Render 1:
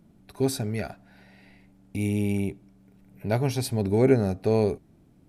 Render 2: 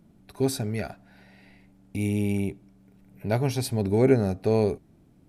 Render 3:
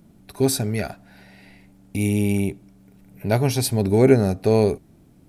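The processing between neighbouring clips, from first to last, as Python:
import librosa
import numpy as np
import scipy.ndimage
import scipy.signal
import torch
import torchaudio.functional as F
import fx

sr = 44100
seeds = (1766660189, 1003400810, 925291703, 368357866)

y1 = x
y2 = fx.high_shelf(y1, sr, hz=5300.0, db=6.0)
y2 = y2 * 10.0 ** (5.0 / 20.0)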